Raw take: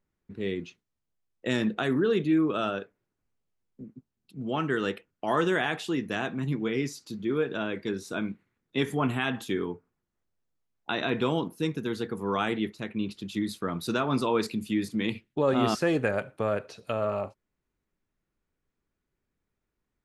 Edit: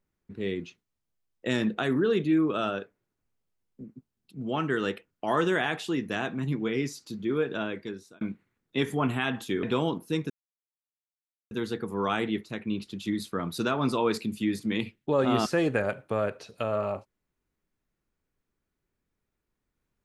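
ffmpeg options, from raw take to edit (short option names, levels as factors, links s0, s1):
-filter_complex "[0:a]asplit=4[s0][s1][s2][s3];[s0]atrim=end=8.21,asetpts=PTS-STARTPTS,afade=t=out:st=7.61:d=0.6[s4];[s1]atrim=start=8.21:end=9.632,asetpts=PTS-STARTPTS,afade=t=in:d=0.004:c=hsin[s5];[s2]atrim=start=11.128:end=11.8,asetpts=PTS-STARTPTS,afade=t=out:st=0.668:d=0.004:c=hsin,apad=pad_dur=1.21[s6];[s3]atrim=start=11.8,asetpts=PTS-STARTPTS,afade=t=in:d=0.004:c=hsin[s7];[s4][s5]concat=n=2:v=0:a=1[s8];[s6][s7]concat=n=2:v=0:a=1[s9];[s8][s9]acrossfade=d=0.004:c1=hsin:c2=hsin"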